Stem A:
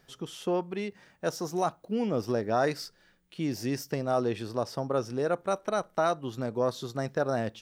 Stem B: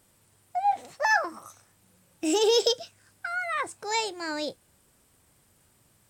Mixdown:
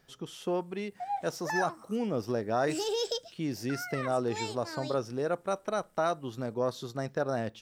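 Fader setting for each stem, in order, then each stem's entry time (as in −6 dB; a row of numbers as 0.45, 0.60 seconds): −2.5, −9.5 decibels; 0.00, 0.45 seconds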